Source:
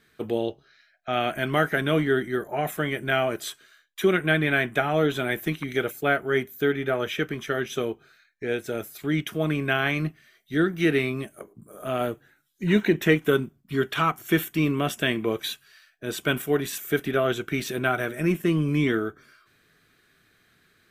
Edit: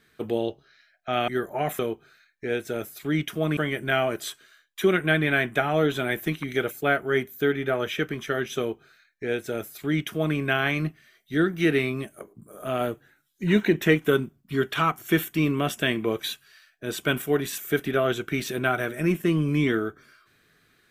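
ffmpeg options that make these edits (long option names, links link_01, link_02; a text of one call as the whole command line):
ffmpeg -i in.wav -filter_complex "[0:a]asplit=4[link_01][link_02][link_03][link_04];[link_01]atrim=end=1.282[link_05];[link_02]atrim=start=2.258:end=2.772[link_06];[link_03]atrim=start=7.778:end=9.562[link_07];[link_04]atrim=start=2.768[link_08];[link_05][link_06]acrossfade=duration=0.004:curve1=hsin:curve2=hsin[link_09];[link_09][link_07]acrossfade=duration=0.004:curve1=hsin:curve2=hsin[link_10];[link_10][link_08]acrossfade=duration=0.004:curve1=hsin:curve2=hsin" out.wav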